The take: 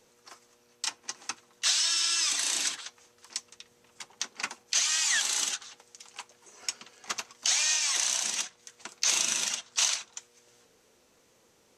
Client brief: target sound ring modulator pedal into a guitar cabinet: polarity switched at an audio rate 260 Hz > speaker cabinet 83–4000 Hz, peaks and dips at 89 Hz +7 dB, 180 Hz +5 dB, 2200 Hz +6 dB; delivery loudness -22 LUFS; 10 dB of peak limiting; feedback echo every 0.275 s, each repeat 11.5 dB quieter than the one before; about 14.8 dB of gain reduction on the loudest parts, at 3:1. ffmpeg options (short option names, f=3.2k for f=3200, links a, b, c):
-af "acompressor=threshold=-43dB:ratio=3,alimiter=level_in=7.5dB:limit=-24dB:level=0:latency=1,volume=-7.5dB,aecho=1:1:275|550|825:0.266|0.0718|0.0194,aeval=exprs='val(0)*sgn(sin(2*PI*260*n/s))':c=same,highpass=83,equalizer=f=89:t=q:w=4:g=7,equalizer=f=180:t=q:w=4:g=5,equalizer=f=2.2k:t=q:w=4:g=6,lowpass=f=4k:w=0.5412,lowpass=f=4k:w=1.3066,volume=25.5dB"